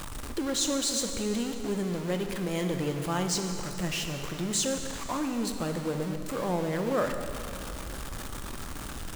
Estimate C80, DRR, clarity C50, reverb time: 7.0 dB, 5.0 dB, 6.0 dB, 2.8 s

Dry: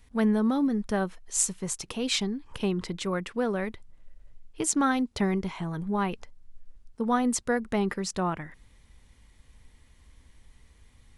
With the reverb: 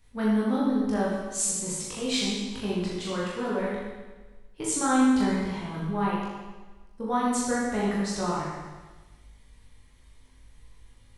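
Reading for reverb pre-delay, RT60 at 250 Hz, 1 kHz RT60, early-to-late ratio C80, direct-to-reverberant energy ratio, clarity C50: 19 ms, 1.3 s, 1.3 s, 1.5 dB, -6.5 dB, -0.5 dB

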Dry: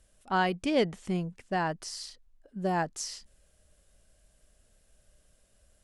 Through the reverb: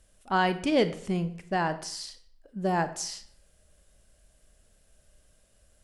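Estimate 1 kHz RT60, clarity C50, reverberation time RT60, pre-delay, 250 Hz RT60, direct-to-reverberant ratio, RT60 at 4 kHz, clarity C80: 0.65 s, 14.0 dB, 0.65 s, 28 ms, 0.65 s, 11.0 dB, 0.50 s, 16.5 dB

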